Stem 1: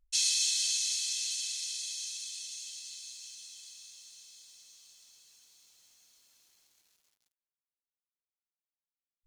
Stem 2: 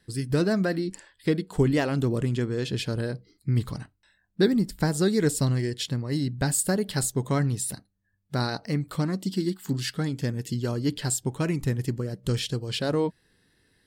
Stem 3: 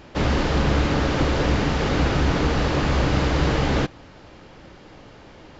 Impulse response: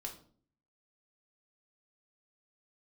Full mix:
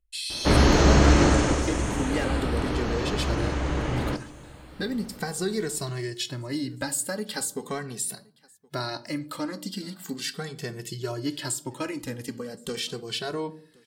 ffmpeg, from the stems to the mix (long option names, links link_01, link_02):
-filter_complex "[0:a]asplit=2[link_01][link_02];[link_02]afreqshift=0.44[link_03];[link_01][link_03]amix=inputs=2:normalize=1,volume=-2.5dB,asplit=2[link_04][link_05];[link_05]volume=-3.5dB[link_06];[1:a]highpass=frequency=450:poles=1,acompressor=threshold=-30dB:ratio=2.5,asplit=2[link_07][link_08];[link_08]adelay=2.2,afreqshift=-0.4[link_09];[link_07][link_09]amix=inputs=2:normalize=1,adelay=400,volume=2.5dB,asplit=3[link_10][link_11][link_12];[link_11]volume=-3.5dB[link_13];[link_12]volume=-24dB[link_14];[2:a]lowpass=3400,adelay=300,afade=type=out:start_time=1.23:duration=0.43:silence=0.316228,asplit=3[link_15][link_16][link_17];[link_16]volume=-4dB[link_18];[link_17]volume=-17.5dB[link_19];[3:a]atrim=start_sample=2205[link_20];[link_06][link_13][link_18]amix=inputs=3:normalize=0[link_21];[link_21][link_20]afir=irnorm=-1:irlink=0[link_22];[link_14][link_19]amix=inputs=2:normalize=0,aecho=0:1:1071:1[link_23];[link_04][link_10][link_15][link_22][link_23]amix=inputs=5:normalize=0"